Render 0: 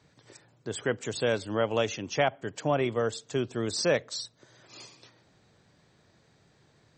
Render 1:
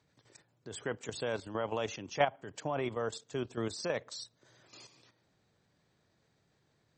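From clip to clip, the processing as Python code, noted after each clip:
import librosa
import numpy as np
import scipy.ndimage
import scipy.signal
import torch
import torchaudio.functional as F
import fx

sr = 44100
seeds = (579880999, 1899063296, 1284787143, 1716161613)

y = fx.dynamic_eq(x, sr, hz=940.0, q=1.5, threshold_db=-43.0, ratio=4.0, max_db=7)
y = fx.level_steps(y, sr, step_db=10)
y = y * 10.0 ** (-3.5 / 20.0)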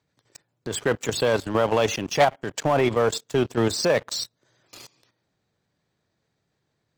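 y = fx.leveller(x, sr, passes=3)
y = y * 10.0 ** (4.0 / 20.0)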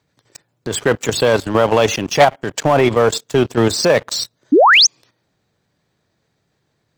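y = fx.spec_paint(x, sr, seeds[0], shape='rise', start_s=4.52, length_s=0.35, low_hz=250.0, high_hz=6800.0, level_db=-16.0)
y = y * 10.0 ** (7.5 / 20.0)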